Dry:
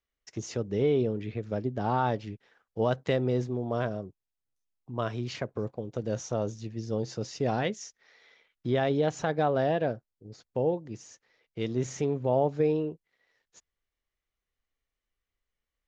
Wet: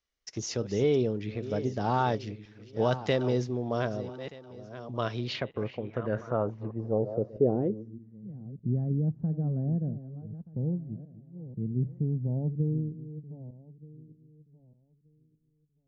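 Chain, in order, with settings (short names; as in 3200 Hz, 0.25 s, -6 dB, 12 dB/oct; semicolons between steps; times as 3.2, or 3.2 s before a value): regenerating reverse delay 0.614 s, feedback 41%, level -13 dB; low-pass sweep 5600 Hz -> 180 Hz, 4.95–8.33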